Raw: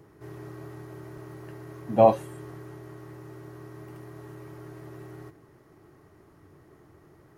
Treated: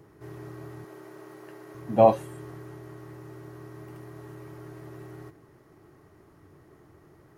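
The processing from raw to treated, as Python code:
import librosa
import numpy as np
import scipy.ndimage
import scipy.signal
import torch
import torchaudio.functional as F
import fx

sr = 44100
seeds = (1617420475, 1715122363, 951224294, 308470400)

y = fx.highpass(x, sr, hz=280.0, slope=12, at=(0.84, 1.75))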